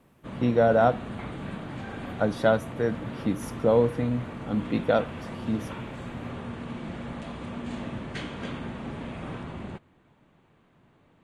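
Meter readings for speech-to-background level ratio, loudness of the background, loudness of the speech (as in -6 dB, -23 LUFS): 11.0 dB, -37.0 LUFS, -26.0 LUFS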